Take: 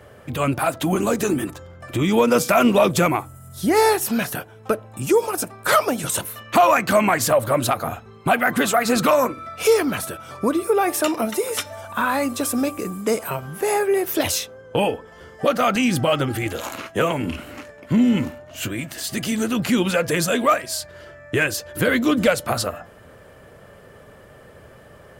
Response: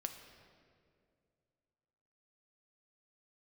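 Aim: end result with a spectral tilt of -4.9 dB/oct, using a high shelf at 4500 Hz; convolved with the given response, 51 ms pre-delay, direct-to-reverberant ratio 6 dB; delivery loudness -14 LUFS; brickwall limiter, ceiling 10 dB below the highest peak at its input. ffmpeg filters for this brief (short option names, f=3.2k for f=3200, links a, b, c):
-filter_complex "[0:a]highshelf=f=4.5k:g=-7,alimiter=limit=-16dB:level=0:latency=1,asplit=2[a][b];[1:a]atrim=start_sample=2205,adelay=51[c];[b][c]afir=irnorm=-1:irlink=0,volume=-4.5dB[d];[a][d]amix=inputs=2:normalize=0,volume=11dB"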